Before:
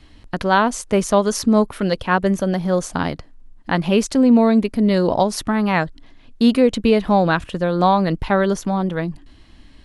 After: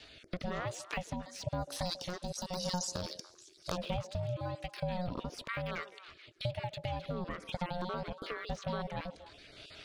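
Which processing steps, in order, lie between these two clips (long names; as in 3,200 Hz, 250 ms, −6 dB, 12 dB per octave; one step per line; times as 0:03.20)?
time-frequency cells dropped at random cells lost 30%
meter weighting curve D
de-essing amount 90%
0:01.68–0:03.77: high shelf with overshoot 3,700 Hz +13.5 dB, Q 3
downward compressor 6 to 1, threshold −30 dBFS, peak gain reduction 17 dB
ring modulation 360 Hz
rotating-speaker cabinet horn 1 Hz
echo through a band-pass that steps 144 ms, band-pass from 430 Hz, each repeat 1.4 octaves, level −9 dB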